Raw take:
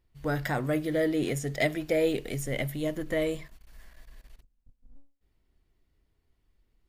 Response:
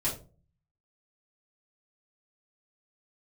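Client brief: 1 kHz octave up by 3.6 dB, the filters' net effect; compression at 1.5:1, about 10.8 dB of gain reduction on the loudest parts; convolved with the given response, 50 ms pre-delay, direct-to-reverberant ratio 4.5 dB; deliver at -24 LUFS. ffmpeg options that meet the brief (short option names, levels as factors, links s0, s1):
-filter_complex "[0:a]equalizer=f=1000:t=o:g=5.5,acompressor=threshold=0.00251:ratio=1.5,asplit=2[s0][s1];[1:a]atrim=start_sample=2205,adelay=50[s2];[s1][s2]afir=irnorm=-1:irlink=0,volume=0.299[s3];[s0][s3]amix=inputs=2:normalize=0,volume=3.76"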